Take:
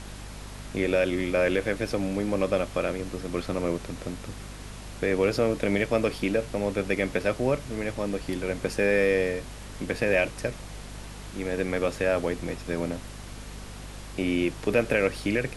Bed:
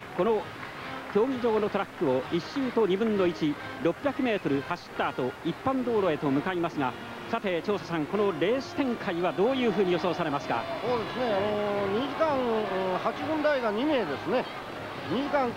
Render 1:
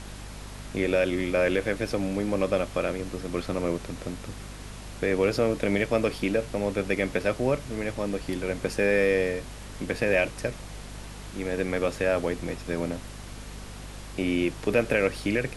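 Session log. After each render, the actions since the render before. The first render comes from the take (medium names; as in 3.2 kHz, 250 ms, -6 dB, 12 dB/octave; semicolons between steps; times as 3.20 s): no audible change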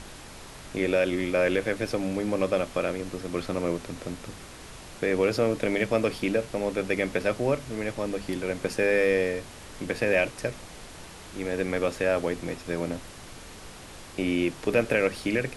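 hum notches 50/100/150/200/250 Hz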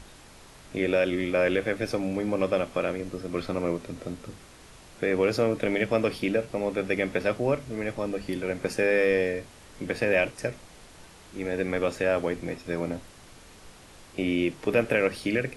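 noise print and reduce 6 dB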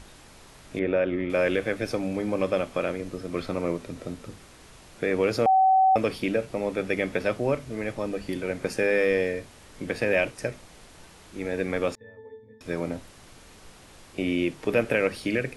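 0.79–1.30 s: low-pass 1.9 kHz; 5.46–5.96 s: bleep 761 Hz -15.5 dBFS; 11.95–12.61 s: pitch-class resonator A, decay 0.58 s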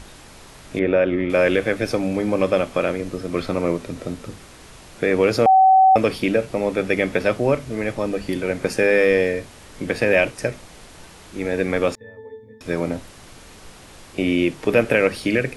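trim +6.5 dB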